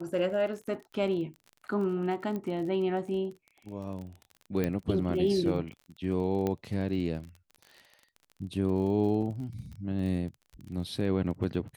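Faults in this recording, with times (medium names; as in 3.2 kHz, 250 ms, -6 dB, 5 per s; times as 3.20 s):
crackle 30 per s -39 dBFS
2.36 s: pop -24 dBFS
4.64 s: pop -17 dBFS
6.47 s: pop -18 dBFS
9.22 s: dropout 4.2 ms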